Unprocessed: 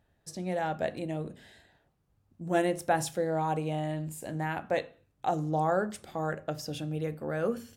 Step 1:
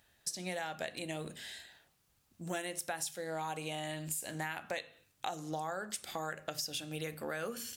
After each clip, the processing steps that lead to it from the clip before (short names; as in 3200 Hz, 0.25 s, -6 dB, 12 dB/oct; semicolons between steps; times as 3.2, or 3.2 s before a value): tilt shelf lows -10 dB, about 1400 Hz; notches 50/100/150 Hz; compressor 10:1, threshold -40 dBFS, peak gain reduction 17 dB; gain +5 dB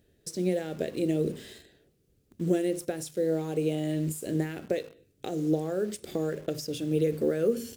resonant low shelf 620 Hz +13.5 dB, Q 3; in parallel at -6.5 dB: bit-crush 7-bit; on the sum: gain -5 dB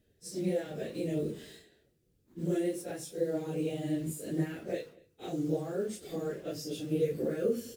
phase scrambler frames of 0.1 s; outdoor echo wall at 41 m, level -25 dB; gain -4.5 dB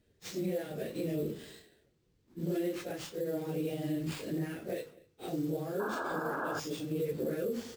sample-rate reducer 12000 Hz, jitter 0%; painted sound noise, 5.79–6.6, 230–1700 Hz -35 dBFS; limiter -26 dBFS, peak gain reduction 7 dB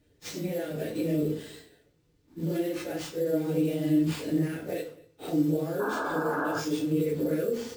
FDN reverb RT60 0.37 s, low-frequency decay 0.9×, high-frequency decay 0.75×, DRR 2 dB; gain +3 dB